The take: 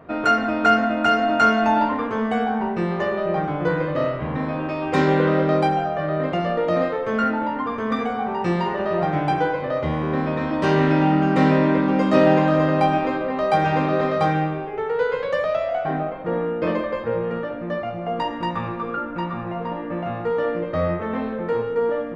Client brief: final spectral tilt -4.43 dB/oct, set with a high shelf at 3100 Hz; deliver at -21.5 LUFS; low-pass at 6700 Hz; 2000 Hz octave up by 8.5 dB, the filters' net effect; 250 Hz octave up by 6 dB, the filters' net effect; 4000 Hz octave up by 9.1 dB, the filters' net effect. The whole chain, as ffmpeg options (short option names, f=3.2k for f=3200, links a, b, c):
-af "lowpass=6.7k,equalizer=f=250:t=o:g=7.5,equalizer=f=2k:t=o:g=8.5,highshelf=f=3.1k:g=6.5,equalizer=f=4k:t=o:g=4,volume=-4.5dB"